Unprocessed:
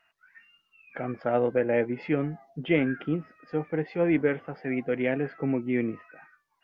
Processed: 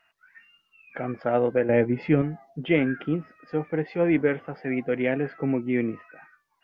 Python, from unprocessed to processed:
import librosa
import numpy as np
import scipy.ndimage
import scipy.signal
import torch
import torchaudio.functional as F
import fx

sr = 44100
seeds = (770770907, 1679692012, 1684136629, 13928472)

y = fx.low_shelf(x, sr, hz=200.0, db=11.0, at=(1.69, 2.22))
y = y * librosa.db_to_amplitude(2.0)